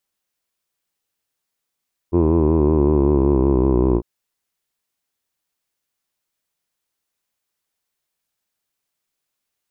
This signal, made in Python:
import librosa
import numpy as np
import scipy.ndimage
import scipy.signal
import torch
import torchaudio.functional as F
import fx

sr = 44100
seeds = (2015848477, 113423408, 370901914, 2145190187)

y = fx.formant_vowel(sr, seeds[0], length_s=1.9, hz=83.6, glide_st=-5.5, vibrato_hz=5.3, vibrato_st=0.9, f1_hz=360.0, f2_hz=1000.0, f3_hz=2500.0)